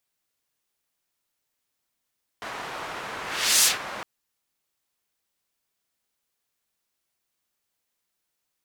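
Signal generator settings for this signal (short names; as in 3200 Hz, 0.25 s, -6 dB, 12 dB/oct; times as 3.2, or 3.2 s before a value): whoosh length 1.61 s, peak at 1.22, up 0.44 s, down 0.16 s, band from 1200 Hz, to 7700 Hz, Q 0.84, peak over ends 18 dB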